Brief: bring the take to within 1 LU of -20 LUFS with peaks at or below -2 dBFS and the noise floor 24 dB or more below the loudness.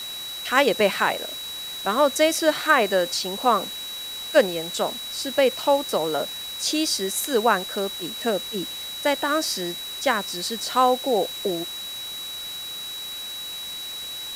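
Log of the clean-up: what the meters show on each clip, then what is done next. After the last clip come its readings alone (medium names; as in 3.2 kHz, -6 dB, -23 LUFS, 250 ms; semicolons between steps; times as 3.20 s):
steady tone 3.9 kHz; tone level -32 dBFS; noise floor -34 dBFS; noise floor target -48 dBFS; loudness -24.0 LUFS; peak level -3.5 dBFS; loudness target -20.0 LUFS
-> band-stop 3.9 kHz, Q 30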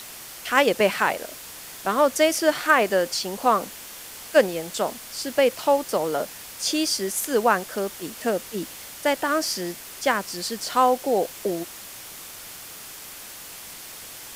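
steady tone not found; noise floor -40 dBFS; noise floor target -48 dBFS
-> noise reduction 8 dB, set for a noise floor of -40 dBFS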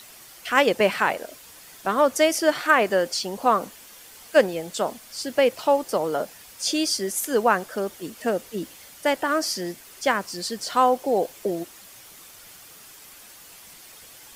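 noise floor -47 dBFS; noise floor target -48 dBFS
-> noise reduction 6 dB, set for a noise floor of -47 dBFS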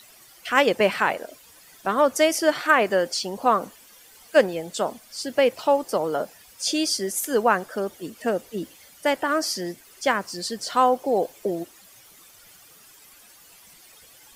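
noise floor -51 dBFS; loudness -23.5 LUFS; peak level -3.5 dBFS; loudness target -20.0 LUFS
-> trim +3.5 dB; peak limiter -2 dBFS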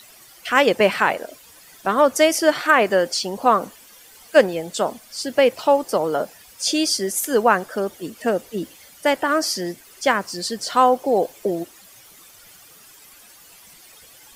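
loudness -20.0 LUFS; peak level -2.0 dBFS; noise floor -48 dBFS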